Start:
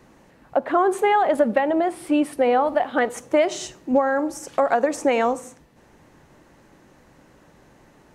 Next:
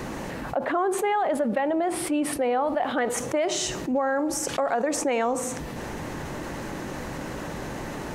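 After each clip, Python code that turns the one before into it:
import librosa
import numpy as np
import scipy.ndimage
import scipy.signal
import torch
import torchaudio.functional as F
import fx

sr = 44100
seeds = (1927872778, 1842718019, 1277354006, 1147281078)

y = fx.env_flatten(x, sr, amount_pct=70)
y = y * 10.0 ** (-8.5 / 20.0)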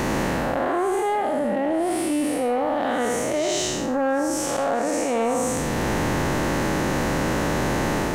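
y = fx.spec_blur(x, sr, span_ms=232.0)
y = fx.leveller(y, sr, passes=1)
y = fx.rider(y, sr, range_db=10, speed_s=0.5)
y = y * 10.0 ** (4.0 / 20.0)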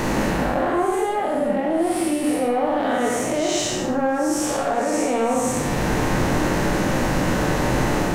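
y = fx.room_shoebox(x, sr, seeds[0], volume_m3=66.0, walls='mixed', distance_m=0.51)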